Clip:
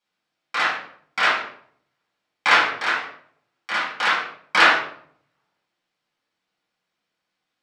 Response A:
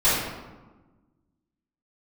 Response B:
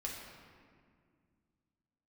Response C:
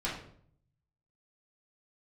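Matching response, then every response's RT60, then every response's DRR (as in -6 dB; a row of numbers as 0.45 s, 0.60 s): C; 1.2 s, 2.0 s, 0.60 s; -15.0 dB, -3.0 dB, -7.5 dB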